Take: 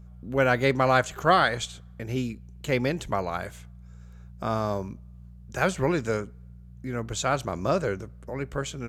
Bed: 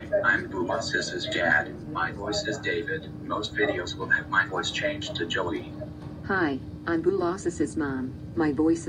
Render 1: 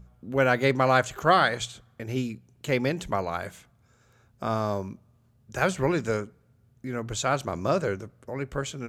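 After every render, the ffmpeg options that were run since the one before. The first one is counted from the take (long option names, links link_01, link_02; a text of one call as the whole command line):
ffmpeg -i in.wav -af "bandreject=frequency=60:width_type=h:width=4,bandreject=frequency=120:width_type=h:width=4,bandreject=frequency=180:width_type=h:width=4" out.wav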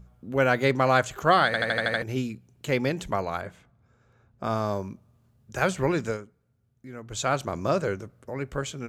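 ffmpeg -i in.wav -filter_complex "[0:a]asettb=1/sr,asplit=3[link_01][link_02][link_03];[link_01]atrim=end=3.414[link_04];[link_02]atrim=start=3.41:end=4.44,asetpts=PTS-STARTPTS,afade=type=in:duration=0.004:curve=qsin,afade=type=out:start_time=1.026:duration=0.004:curve=qsin,lowpass=frequency=1600:poles=1[link_05];[link_03]atrim=start=4.436[link_06];[link_04][link_05]acrossfade=duration=0.004:curve1=hsin:curve2=qsin[link_07];[link_07][link_06]acrossfade=duration=0.004:curve1=qsin:curve2=hsin,asplit=10[link_08][link_09][link_10][link_11][link_12][link_13][link_14][link_15][link_16][link_17];[link_08]atrim=end=1.542[link_18];[link_09]atrim=start=1.458:end=1.542[link_19];[link_10]atrim=start=1.458:end=1.542[link_20];[link_11]atrim=start=1.458:end=1.542[link_21];[link_12]atrim=start=1.458:end=1.542[link_22];[link_13]atrim=start=1.458:end=1.542[link_23];[link_14]atrim=start=1.458:end=1.542[link_24];[link_15]atrim=start=2.018:end=6.18,asetpts=PTS-STARTPTS,afade=type=out:start_time=4.002:duration=0.16:curve=qsin:silence=0.375837[link_25];[link_16]atrim=start=6.18:end=7.09,asetpts=PTS-STARTPTS,volume=-8.5dB[link_26];[link_17]atrim=start=7.09,asetpts=PTS-STARTPTS,afade=type=in:duration=0.16:curve=qsin:silence=0.375837[link_27];[link_18][link_19]acrossfade=duration=0.004:curve1=hsin:curve2=hsin[link_28];[link_28][link_20]acrossfade=duration=0.004:curve1=hsin:curve2=hsin[link_29];[link_29][link_21]acrossfade=duration=0.004:curve1=hsin:curve2=hsin[link_30];[link_30][link_22]acrossfade=duration=0.004:curve1=hsin:curve2=hsin[link_31];[link_31][link_23]acrossfade=duration=0.004:curve1=hsin:curve2=hsin[link_32];[link_32][link_24]acrossfade=duration=0.004:curve1=hsin:curve2=hsin[link_33];[link_25][link_26][link_27]concat=n=3:v=0:a=1[link_34];[link_33][link_34]acrossfade=duration=0.004:curve1=hsin:curve2=hsin" out.wav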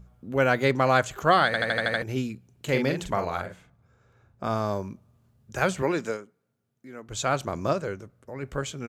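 ffmpeg -i in.wav -filter_complex "[0:a]asplit=3[link_01][link_02][link_03];[link_01]afade=type=out:start_time=2.67:duration=0.02[link_04];[link_02]asplit=2[link_05][link_06];[link_06]adelay=45,volume=-6dB[link_07];[link_05][link_07]amix=inputs=2:normalize=0,afade=type=in:start_time=2.67:duration=0.02,afade=type=out:start_time=4.46:duration=0.02[link_08];[link_03]afade=type=in:start_time=4.46:duration=0.02[link_09];[link_04][link_08][link_09]amix=inputs=3:normalize=0,asettb=1/sr,asplit=3[link_10][link_11][link_12];[link_10]atrim=end=5.824[link_13];[link_11]atrim=start=5.82:end=7.09,asetpts=PTS-STARTPTS,afade=type=in:duration=0.004:curve=qsin,afade=type=out:start_time=1.266:duration=0.004:curve=qsin,highpass=210[link_14];[link_12]atrim=start=7.086[link_15];[link_13][link_14]acrossfade=duration=0.004:curve1=hsin:curve2=qsin[link_16];[link_16][link_15]acrossfade=duration=0.004:curve1=qsin:curve2=hsin,asplit=3[link_17][link_18][link_19];[link_17]atrim=end=7.732[link_20];[link_18]atrim=start=7.728:end=8.432,asetpts=PTS-STARTPTS,volume=-4dB[link_21];[link_19]atrim=start=8.428[link_22];[link_20][link_21]acrossfade=duration=0.004:curve1=hsin:curve2=hsin[link_23];[link_23][link_22]acrossfade=duration=0.004:curve1=hsin:curve2=hsin" out.wav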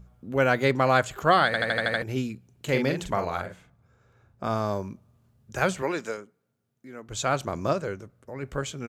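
ffmpeg -i in.wav -filter_complex "[0:a]asettb=1/sr,asplit=3[link_01][link_02][link_03];[link_01]atrim=end=0.704[link_04];[link_02]atrim=start=0.7:end=2.11,asetpts=PTS-STARTPTS,afade=type=in:duration=0.004:curve=qsin,afade=type=out:start_time=1.406:duration=0.004:curve=qsin,bandreject=frequency=6100:width=10[link_05];[link_03]atrim=start=2.106[link_06];[link_04][link_05]acrossfade=duration=0.004:curve1=hsin:curve2=qsin[link_07];[link_07][link_06]acrossfade=duration=0.004:curve1=qsin:curve2=hsin,asettb=1/sr,asplit=3[link_08][link_09][link_10];[link_08]atrim=end=5.784[link_11];[link_09]atrim=start=5.78:end=6.18,asetpts=PTS-STARTPTS,afade=type=in:duration=0.004:curve=qsin,afade=type=out:start_time=0.396:duration=0.004:curve=qsin,lowshelf=frequency=320:gain=-8[link_12];[link_10]atrim=start=6.176[link_13];[link_11][link_12]acrossfade=duration=0.004:curve1=hsin:curve2=qsin[link_14];[link_14][link_13]acrossfade=duration=0.004:curve1=qsin:curve2=hsin" out.wav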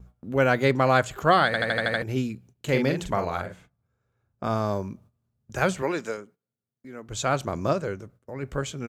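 ffmpeg -i in.wav -af "lowshelf=frequency=490:gain=2.5,agate=range=-15dB:threshold=-51dB:ratio=16:detection=peak" out.wav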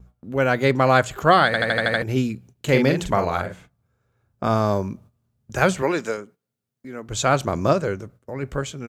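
ffmpeg -i in.wav -af "dynaudnorm=framelen=180:gausssize=7:maxgain=6dB" out.wav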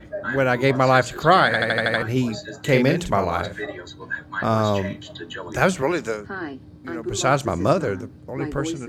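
ffmpeg -i in.wav -i bed.wav -filter_complex "[1:a]volume=-6dB[link_01];[0:a][link_01]amix=inputs=2:normalize=0" out.wav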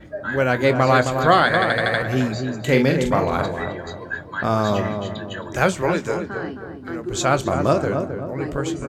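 ffmpeg -i in.wav -filter_complex "[0:a]asplit=2[link_01][link_02];[link_02]adelay=24,volume=-13dB[link_03];[link_01][link_03]amix=inputs=2:normalize=0,asplit=2[link_04][link_05];[link_05]adelay=265,lowpass=frequency=1200:poles=1,volume=-5.5dB,asplit=2[link_06][link_07];[link_07]adelay=265,lowpass=frequency=1200:poles=1,volume=0.48,asplit=2[link_08][link_09];[link_09]adelay=265,lowpass=frequency=1200:poles=1,volume=0.48,asplit=2[link_10][link_11];[link_11]adelay=265,lowpass=frequency=1200:poles=1,volume=0.48,asplit=2[link_12][link_13];[link_13]adelay=265,lowpass=frequency=1200:poles=1,volume=0.48,asplit=2[link_14][link_15];[link_15]adelay=265,lowpass=frequency=1200:poles=1,volume=0.48[link_16];[link_04][link_06][link_08][link_10][link_12][link_14][link_16]amix=inputs=7:normalize=0" out.wav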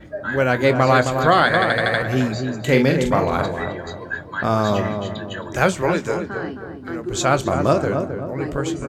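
ffmpeg -i in.wav -af "volume=1dB,alimiter=limit=-3dB:level=0:latency=1" out.wav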